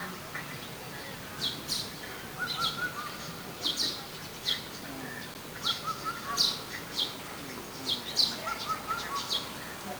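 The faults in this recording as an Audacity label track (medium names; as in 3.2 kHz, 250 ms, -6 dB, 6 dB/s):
5.340000	5.350000	dropout 9.2 ms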